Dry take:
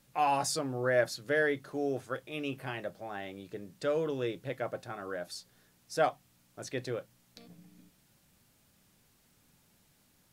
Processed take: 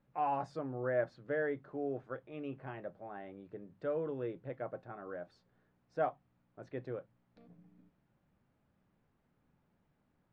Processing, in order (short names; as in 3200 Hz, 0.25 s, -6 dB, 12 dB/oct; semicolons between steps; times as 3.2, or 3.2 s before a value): LPF 1400 Hz 12 dB/oct; notches 50/100 Hz; gain -5 dB